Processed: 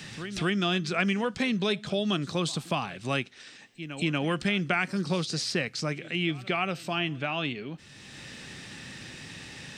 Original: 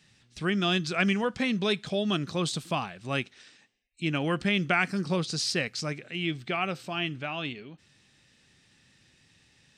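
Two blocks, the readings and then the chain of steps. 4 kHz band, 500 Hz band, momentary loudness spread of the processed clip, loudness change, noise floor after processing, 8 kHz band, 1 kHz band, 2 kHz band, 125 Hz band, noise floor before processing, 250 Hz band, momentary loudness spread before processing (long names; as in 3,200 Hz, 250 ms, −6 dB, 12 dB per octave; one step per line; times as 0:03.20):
0.0 dB, 0.0 dB, 15 LU, 0.0 dB, −50 dBFS, −0.5 dB, 0.0 dB, 0.0 dB, +0.5 dB, −64 dBFS, +0.5 dB, 8 LU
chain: backwards echo 237 ms −23 dB
multiband upward and downward compressor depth 70%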